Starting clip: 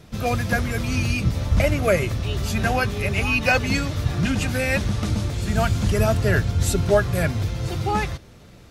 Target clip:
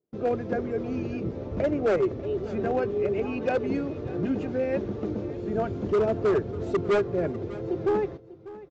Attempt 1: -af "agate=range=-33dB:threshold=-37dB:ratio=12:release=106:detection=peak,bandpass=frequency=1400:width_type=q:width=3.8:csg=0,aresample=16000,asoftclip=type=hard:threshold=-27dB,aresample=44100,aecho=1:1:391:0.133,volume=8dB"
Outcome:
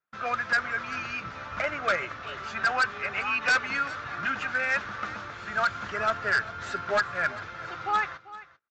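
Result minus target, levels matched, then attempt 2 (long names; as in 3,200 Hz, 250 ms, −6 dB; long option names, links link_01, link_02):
500 Hz band −10.5 dB; echo 204 ms early
-af "agate=range=-33dB:threshold=-37dB:ratio=12:release=106:detection=peak,bandpass=frequency=390:width_type=q:width=3.8:csg=0,aresample=16000,asoftclip=type=hard:threshold=-27dB,aresample=44100,aecho=1:1:595:0.133,volume=8dB"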